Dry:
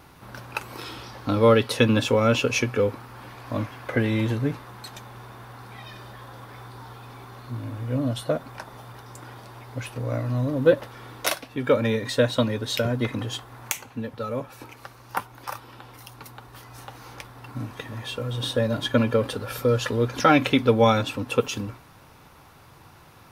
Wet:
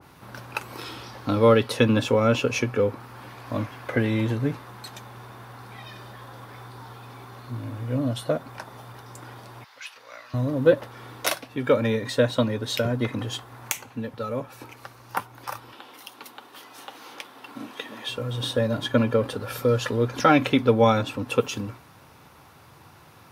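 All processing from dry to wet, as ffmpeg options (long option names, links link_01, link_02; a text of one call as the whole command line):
ffmpeg -i in.wav -filter_complex "[0:a]asettb=1/sr,asplit=3[link_01][link_02][link_03];[link_01]atrim=end=9.644[link_04];[link_02]atrim=start=9.64:end=10.34,asetpts=PTS-STARTPTS,afade=type=in:duration=0.004:curve=qsin,afade=type=out:start_time=0.696:duration=0.004:curve=qsin,highpass=1500,highshelf=frequency=6900:width_type=q:width=1.5:gain=-7[link_05];[link_03]atrim=start=10.336[link_06];[link_04][link_05]acrossfade=duration=0.004:curve1=hsin:curve2=qsin[link_07];[link_07][link_06]acrossfade=duration=0.004:curve1=qsin:curve2=hsin,asettb=1/sr,asplit=3[link_08][link_09][link_10];[link_08]atrim=end=15.724[link_11];[link_09]atrim=start=15.72:end=18.09,asetpts=PTS-STARTPTS,afade=type=in:duration=0.004:curve=qsin,afade=type=out:start_time=2.366:duration=0.004:curve=qsin,highpass=frequency=220:width=0.5412,highpass=frequency=220:width=1.3066,equalizer=frequency=3200:width_type=o:width=0.63:gain=6.5[link_12];[link_10]atrim=start=18.086[link_13];[link_11][link_12]acrossfade=duration=0.004:curve1=hsin:curve2=qsin[link_14];[link_14][link_13]acrossfade=duration=0.004:curve1=qsin:curve2=hsin,highpass=71,adynamicequalizer=threshold=0.0158:dfrequency=1800:dqfactor=0.7:tfrequency=1800:tqfactor=0.7:attack=5:release=100:ratio=0.375:range=2:mode=cutabove:tftype=highshelf" out.wav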